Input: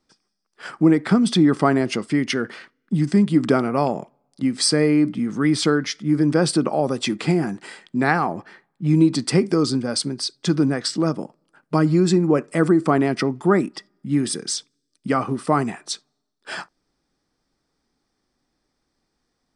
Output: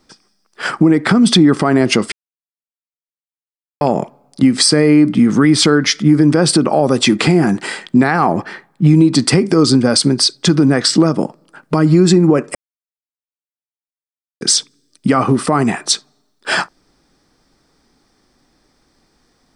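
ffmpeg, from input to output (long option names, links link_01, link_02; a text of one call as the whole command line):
ffmpeg -i in.wav -filter_complex "[0:a]asplit=5[link_01][link_02][link_03][link_04][link_05];[link_01]atrim=end=2.12,asetpts=PTS-STARTPTS,afade=type=out:start_time=2.116:duration=0.004:curve=hsin[link_06];[link_02]atrim=start=2.12:end=3.81,asetpts=PTS-STARTPTS,volume=0[link_07];[link_03]atrim=start=3.81:end=12.55,asetpts=PTS-STARTPTS,afade=type=in:duration=0.004:curve=hsin,afade=type=out:start_time=8.736:duration=0.004:curve=hsin[link_08];[link_04]atrim=start=12.55:end=14.41,asetpts=PTS-STARTPTS,volume=0[link_09];[link_05]atrim=start=14.41,asetpts=PTS-STARTPTS,afade=type=in:duration=0.004:curve=hsin[link_10];[link_06][link_07][link_08][link_09][link_10]concat=n=5:v=0:a=1,acompressor=threshold=-21dB:ratio=6,alimiter=level_in=16dB:limit=-1dB:release=50:level=0:latency=1,volume=-1dB" out.wav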